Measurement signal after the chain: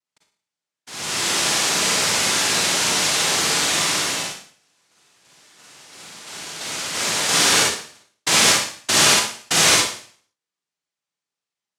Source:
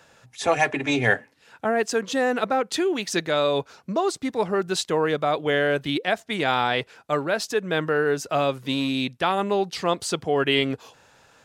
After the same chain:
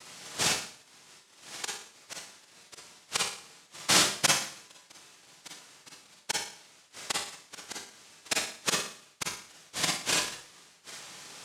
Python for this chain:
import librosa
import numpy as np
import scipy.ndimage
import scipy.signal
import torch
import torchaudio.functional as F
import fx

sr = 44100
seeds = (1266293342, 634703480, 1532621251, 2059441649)

y = fx.gate_flip(x, sr, shuts_db=-18.0, range_db=-42)
y = fx.noise_vocoder(y, sr, seeds[0], bands=1)
y = fx.rev_schroeder(y, sr, rt60_s=0.51, comb_ms=38, drr_db=-2.5)
y = F.gain(torch.from_numpy(y), 4.0).numpy()